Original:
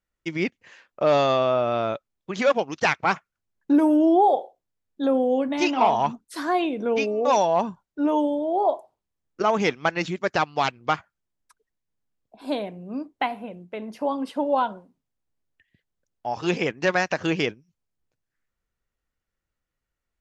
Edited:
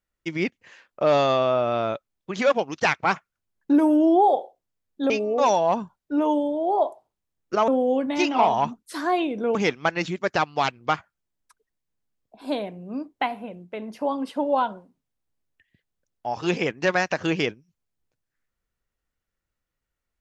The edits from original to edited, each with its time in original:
5.10–6.97 s: move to 9.55 s

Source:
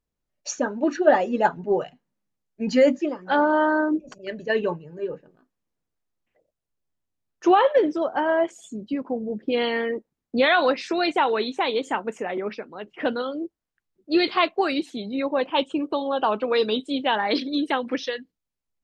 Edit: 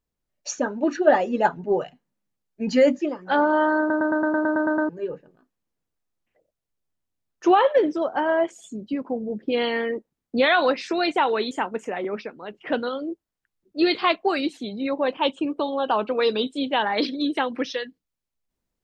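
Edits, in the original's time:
3.79 s: stutter in place 0.11 s, 10 plays
11.51–11.84 s: delete

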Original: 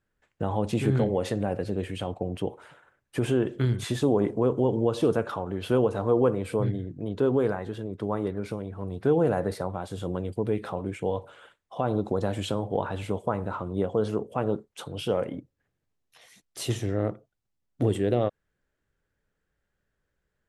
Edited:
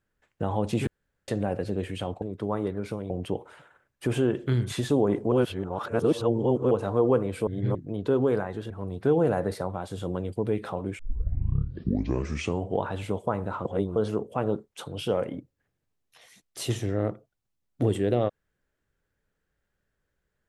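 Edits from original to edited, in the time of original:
0.87–1.28 s: room tone
4.44–5.83 s: reverse
6.59–6.87 s: reverse
7.82–8.70 s: move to 2.22 s
10.99 s: tape start 1.82 s
13.65–13.96 s: reverse

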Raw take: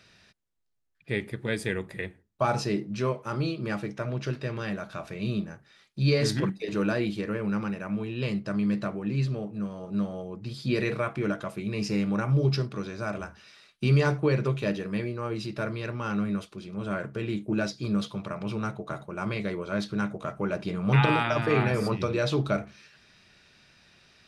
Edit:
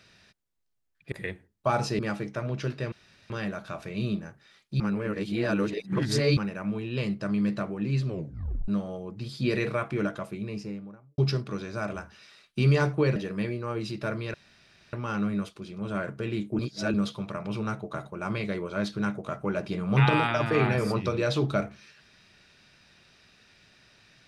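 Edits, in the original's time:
1.12–1.87 s: delete
2.74–3.62 s: delete
4.55 s: insert room tone 0.38 s
6.05–7.62 s: reverse
9.33 s: tape stop 0.60 s
11.27–12.43 s: studio fade out
14.41–14.71 s: delete
15.89 s: insert room tone 0.59 s
17.55–17.90 s: reverse

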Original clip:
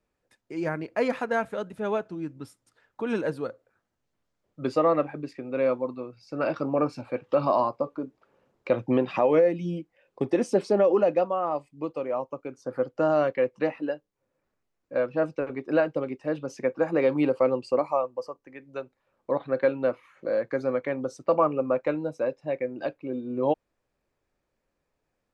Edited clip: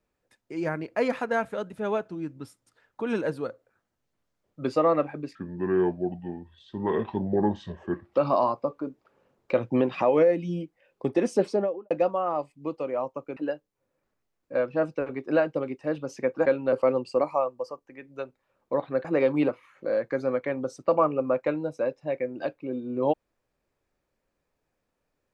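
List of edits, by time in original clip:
5.35–7.30 s: speed 70%
10.58–11.07 s: studio fade out
12.53–13.77 s: delete
16.86–17.30 s: swap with 19.62–19.89 s

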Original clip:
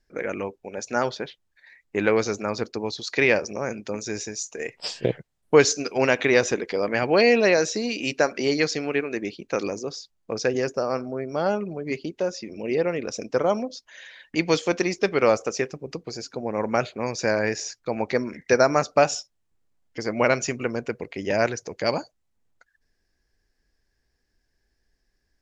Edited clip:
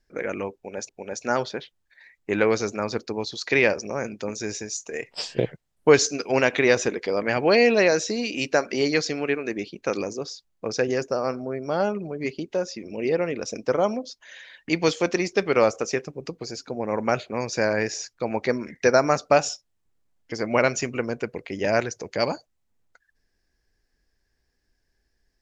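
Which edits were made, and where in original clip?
0.55–0.89 s: loop, 2 plays

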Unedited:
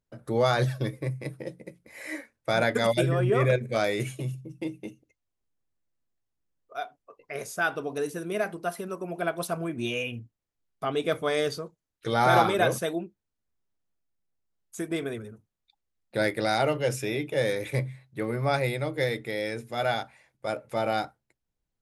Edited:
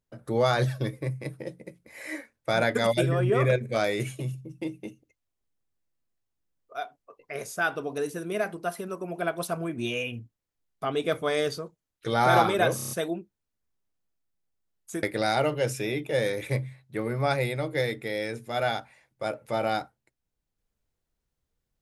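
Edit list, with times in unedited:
12.76 s: stutter 0.03 s, 6 plays
14.88–16.26 s: delete

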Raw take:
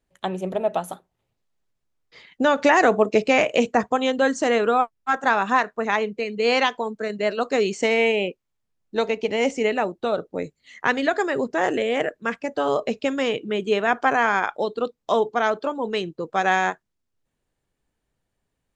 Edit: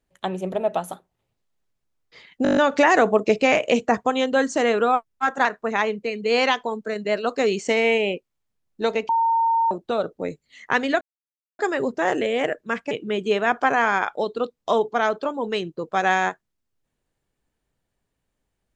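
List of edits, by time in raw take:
2.43 s: stutter 0.02 s, 8 plays
5.31–5.59 s: delete
9.23–9.85 s: bleep 914 Hz -16.5 dBFS
11.15 s: insert silence 0.58 s
12.47–13.32 s: delete

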